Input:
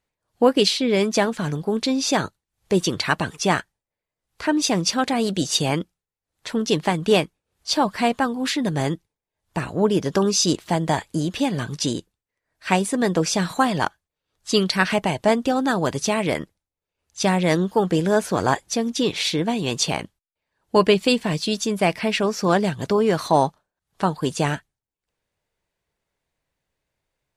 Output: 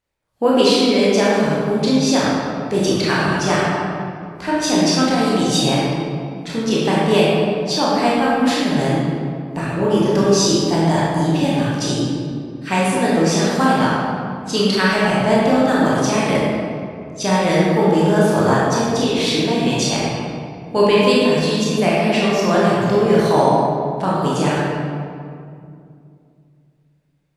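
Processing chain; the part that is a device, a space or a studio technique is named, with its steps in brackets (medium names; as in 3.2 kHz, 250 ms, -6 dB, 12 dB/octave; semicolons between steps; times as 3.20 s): stairwell (reverberation RT60 2.4 s, pre-delay 20 ms, DRR -7 dB); trim -3 dB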